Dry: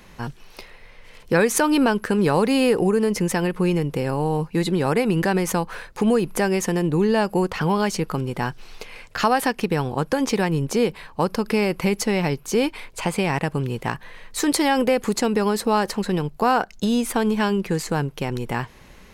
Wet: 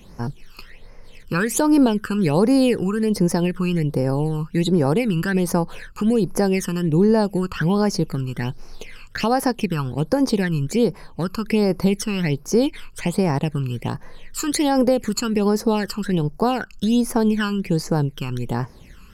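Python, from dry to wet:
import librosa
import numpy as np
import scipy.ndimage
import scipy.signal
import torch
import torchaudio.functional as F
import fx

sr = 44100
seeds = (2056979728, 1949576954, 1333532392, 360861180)

y = fx.phaser_stages(x, sr, stages=12, low_hz=620.0, high_hz=3200.0, hz=1.3, feedback_pct=50)
y = y * 10.0 ** (1.5 / 20.0)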